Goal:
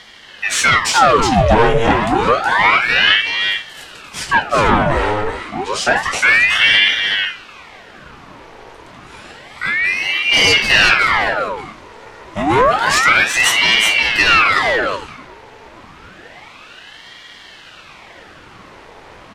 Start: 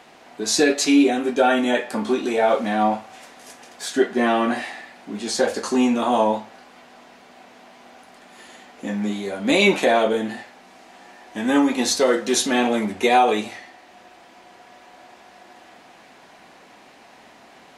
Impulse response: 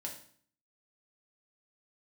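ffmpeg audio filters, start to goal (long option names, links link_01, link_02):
-filter_complex "[0:a]highshelf=frequency=5400:gain=-7,asplit=2[link_01][link_02];[link_02]aeval=exprs='0.668*sin(PI/2*3.55*val(0)/0.668)':channel_layout=same,volume=-11dB[link_03];[link_01][link_03]amix=inputs=2:normalize=0,aecho=1:1:339:0.596,asetrate=40517,aresample=44100,aeval=exprs='val(0)*sin(2*PI*1400*n/s+1400*0.85/0.29*sin(2*PI*0.29*n/s))':channel_layout=same,volume=2.5dB"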